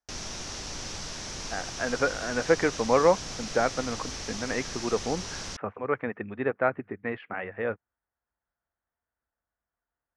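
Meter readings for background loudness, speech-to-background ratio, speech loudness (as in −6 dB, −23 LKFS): −36.0 LKFS, 6.5 dB, −29.5 LKFS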